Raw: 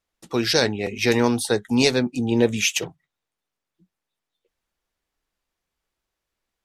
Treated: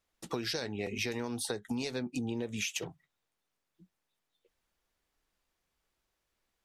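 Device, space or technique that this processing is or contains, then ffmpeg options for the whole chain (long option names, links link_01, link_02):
serial compression, peaks first: -af "acompressor=threshold=-27dB:ratio=6,acompressor=threshold=-33dB:ratio=3"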